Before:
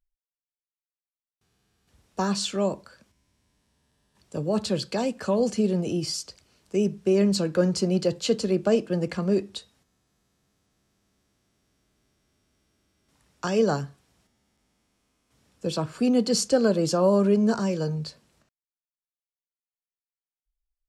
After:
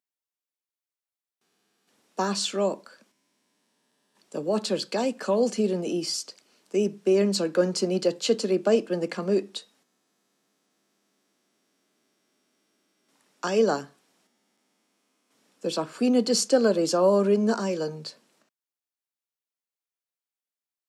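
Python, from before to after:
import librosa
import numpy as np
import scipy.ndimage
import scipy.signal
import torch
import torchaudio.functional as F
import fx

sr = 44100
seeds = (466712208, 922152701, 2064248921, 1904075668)

y = scipy.signal.sosfilt(scipy.signal.butter(4, 220.0, 'highpass', fs=sr, output='sos'), x)
y = y * 10.0 ** (1.0 / 20.0)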